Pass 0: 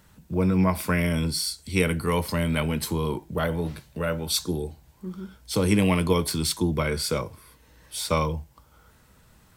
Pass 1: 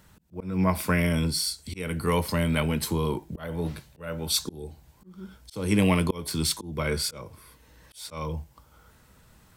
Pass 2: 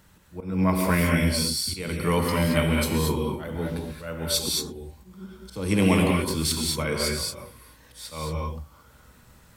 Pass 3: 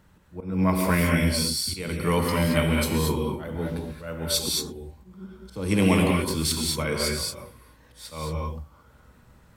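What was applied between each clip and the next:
auto swell 0.301 s
non-linear reverb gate 0.25 s rising, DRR -0.5 dB
mismatched tape noise reduction decoder only

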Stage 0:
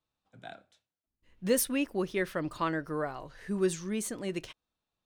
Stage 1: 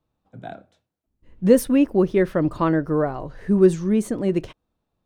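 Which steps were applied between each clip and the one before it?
tilt shelf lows +8.5 dB, about 1200 Hz; gain +6.5 dB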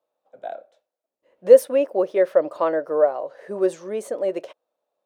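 resonant high-pass 560 Hz, resonance Q 4.9; gain -4 dB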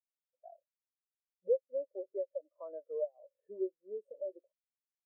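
compressor 4:1, threshold -27 dBFS, peak gain reduction 18 dB; spectral expander 2.5:1; gain -4.5 dB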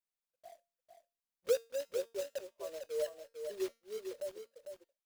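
block floating point 3-bit; resonator 230 Hz, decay 0.32 s, harmonics all, mix 50%; echo 0.45 s -7 dB; gain +4 dB

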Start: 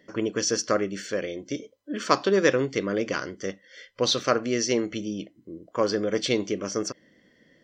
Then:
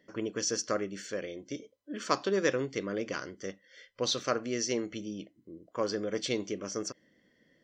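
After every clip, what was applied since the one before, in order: dynamic EQ 7100 Hz, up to +4 dB, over -46 dBFS, Q 1.8; gain -7.5 dB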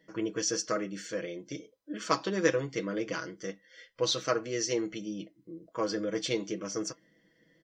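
comb 6.2 ms, depth 69%; flange 1.4 Hz, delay 4.6 ms, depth 1.6 ms, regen -74%; gain +3.5 dB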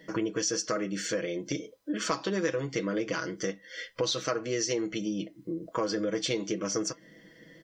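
in parallel at -2 dB: limiter -22.5 dBFS, peak gain reduction 11.5 dB; on the sum: compressor 3:1, threshold -38 dBFS, peak gain reduction 15.5 dB; gain +7.5 dB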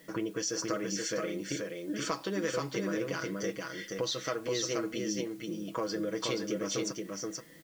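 in parallel at -8 dB: requantised 8-bit, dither triangular; on the sum: echo 0.477 s -3.5 dB; gain -7 dB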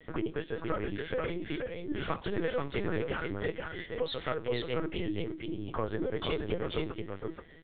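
LPC vocoder at 8 kHz pitch kept; gain +1 dB

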